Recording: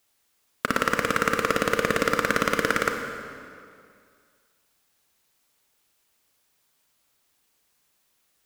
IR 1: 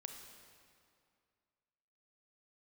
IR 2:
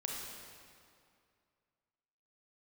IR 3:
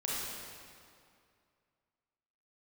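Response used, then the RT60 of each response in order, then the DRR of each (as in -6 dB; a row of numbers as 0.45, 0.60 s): 1; 2.3, 2.3, 2.3 s; 4.0, -1.5, -6.5 dB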